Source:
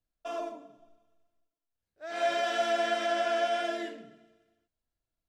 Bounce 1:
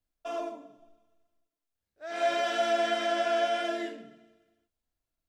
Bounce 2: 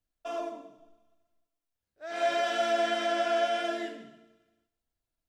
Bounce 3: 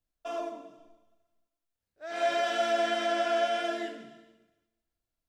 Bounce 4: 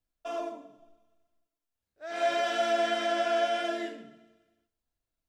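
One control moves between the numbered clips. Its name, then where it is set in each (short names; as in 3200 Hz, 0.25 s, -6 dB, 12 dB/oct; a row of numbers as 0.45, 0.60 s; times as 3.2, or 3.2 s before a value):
non-linear reverb, gate: 90, 340, 510, 170 ms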